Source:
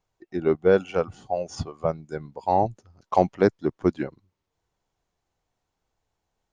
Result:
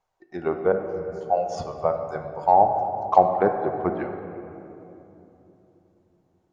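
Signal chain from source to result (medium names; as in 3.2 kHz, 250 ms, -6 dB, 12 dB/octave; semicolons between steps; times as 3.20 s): low-pass that closes with the level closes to 1.3 kHz, closed at -17 dBFS; 0.72–1.21 s: Chebyshev band-stop 180–4700 Hz, order 4; 3.30–3.89 s: level-controlled noise filter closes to 1.4 kHz, open at -16.5 dBFS; FFT filter 290 Hz 0 dB, 500 Hz +6 dB, 740 Hz +13 dB, 3 kHz +4 dB; on a send: reverberation RT60 3.1 s, pre-delay 4 ms, DRR 5 dB; on the sum: trim -6.5 dB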